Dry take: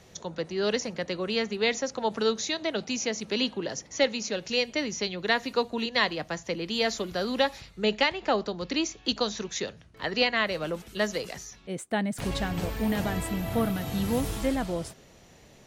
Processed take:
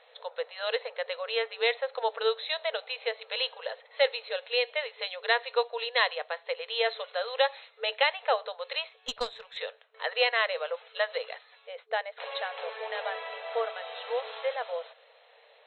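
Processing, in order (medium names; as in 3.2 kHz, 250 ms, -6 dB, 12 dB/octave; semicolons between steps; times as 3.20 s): FFT band-pass 440–4200 Hz; 8.89–9.57 s: valve stage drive 19 dB, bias 0.8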